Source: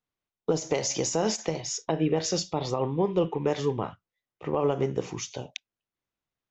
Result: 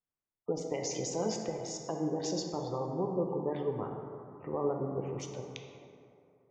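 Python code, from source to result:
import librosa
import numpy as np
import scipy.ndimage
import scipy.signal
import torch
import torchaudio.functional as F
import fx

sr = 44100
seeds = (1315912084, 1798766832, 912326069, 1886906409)

y = fx.wiener(x, sr, points=9)
y = fx.spec_gate(y, sr, threshold_db=-25, keep='strong')
y = fx.rev_plate(y, sr, seeds[0], rt60_s=2.7, hf_ratio=0.4, predelay_ms=0, drr_db=2.5)
y = F.gain(torch.from_numpy(y), -8.5).numpy()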